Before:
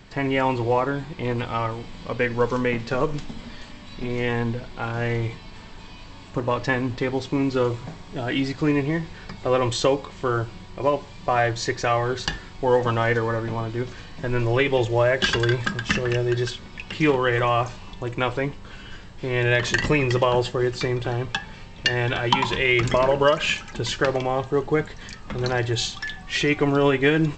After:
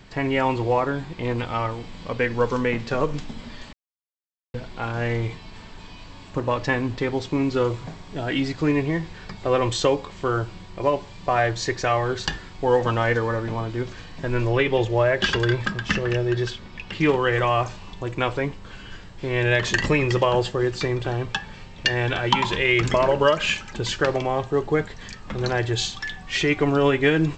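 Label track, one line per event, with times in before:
3.730000	4.540000	mute
14.490000	17.090000	distance through air 55 m

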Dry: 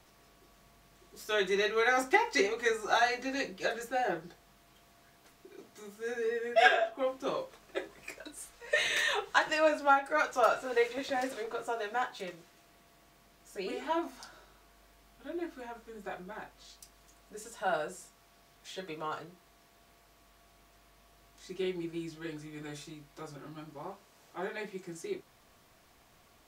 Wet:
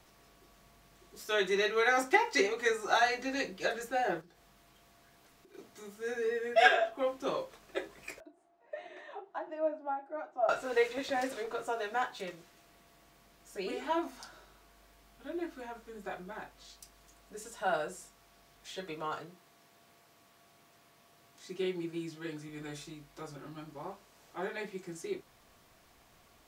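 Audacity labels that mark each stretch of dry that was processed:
1.200000	3.020000	bass shelf 68 Hz -9 dB
4.210000	5.540000	compression 4:1, threshold -58 dBFS
8.200000	10.490000	two resonant band-passes 490 Hz, apart 0.93 oct
19.140000	22.490000	high-pass 89 Hz 24 dB/octave

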